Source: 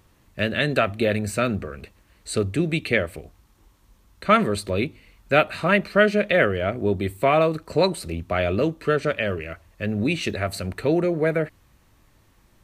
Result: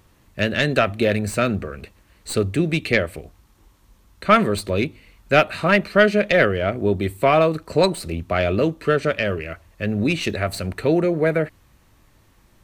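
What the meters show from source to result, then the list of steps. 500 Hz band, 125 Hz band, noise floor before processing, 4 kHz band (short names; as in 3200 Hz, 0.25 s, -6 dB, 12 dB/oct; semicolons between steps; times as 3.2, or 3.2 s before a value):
+2.5 dB, +2.5 dB, -59 dBFS, +2.5 dB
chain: tracing distortion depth 0.03 ms; gain +2.5 dB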